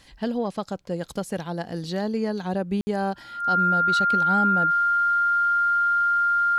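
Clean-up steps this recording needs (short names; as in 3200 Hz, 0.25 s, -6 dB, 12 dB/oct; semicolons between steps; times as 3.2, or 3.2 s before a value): notch 1400 Hz, Q 30; room tone fill 2.81–2.87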